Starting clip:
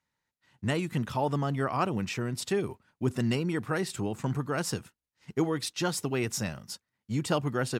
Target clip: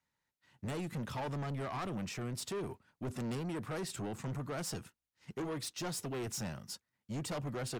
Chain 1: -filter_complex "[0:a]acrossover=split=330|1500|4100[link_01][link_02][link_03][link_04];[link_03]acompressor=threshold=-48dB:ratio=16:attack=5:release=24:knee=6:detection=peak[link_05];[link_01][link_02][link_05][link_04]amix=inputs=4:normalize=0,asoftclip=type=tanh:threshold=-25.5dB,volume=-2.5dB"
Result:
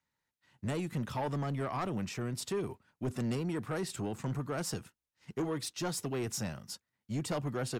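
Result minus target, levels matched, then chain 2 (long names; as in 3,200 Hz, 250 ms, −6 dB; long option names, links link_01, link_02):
soft clipping: distortion −6 dB
-filter_complex "[0:a]acrossover=split=330|1500|4100[link_01][link_02][link_03][link_04];[link_03]acompressor=threshold=-48dB:ratio=16:attack=5:release=24:knee=6:detection=peak[link_05];[link_01][link_02][link_05][link_04]amix=inputs=4:normalize=0,asoftclip=type=tanh:threshold=-32.5dB,volume=-2.5dB"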